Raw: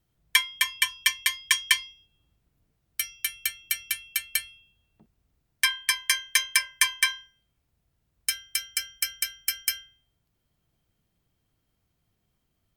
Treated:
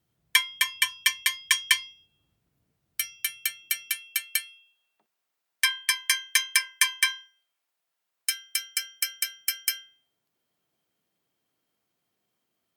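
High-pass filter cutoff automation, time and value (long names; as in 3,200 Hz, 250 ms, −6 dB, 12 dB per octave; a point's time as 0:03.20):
0:03.03 95 Hz
0:03.99 260 Hz
0:04.39 800 Hz
0:08.35 800 Hz
0:09.13 290 Hz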